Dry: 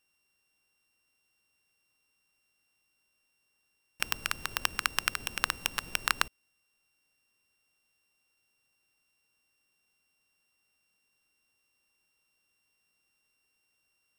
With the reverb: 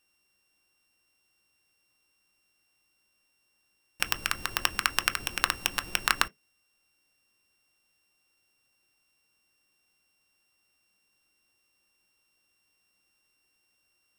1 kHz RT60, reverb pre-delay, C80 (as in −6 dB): can't be measured, 3 ms, 41.5 dB